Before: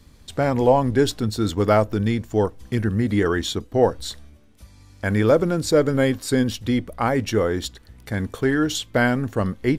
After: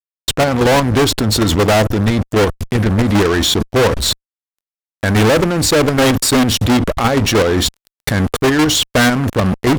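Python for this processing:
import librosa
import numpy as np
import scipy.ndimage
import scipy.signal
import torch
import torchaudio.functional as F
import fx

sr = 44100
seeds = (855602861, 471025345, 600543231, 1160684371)

y = fx.level_steps(x, sr, step_db=19)
y = fx.fuzz(y, sr, gain_db=38.0, gate_db=-47.0)
y = y * 10.0 ** (3.5 / 20.0)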